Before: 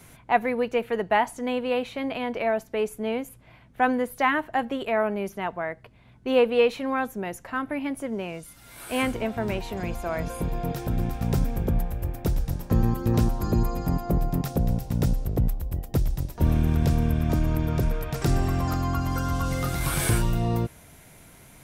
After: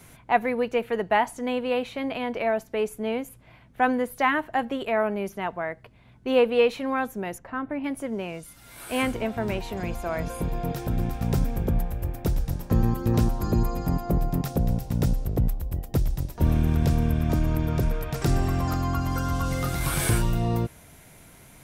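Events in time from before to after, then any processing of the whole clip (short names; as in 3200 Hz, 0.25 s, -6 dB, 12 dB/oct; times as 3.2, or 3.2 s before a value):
7.38–7.84 LPF 1300 Hz 6 dB/oct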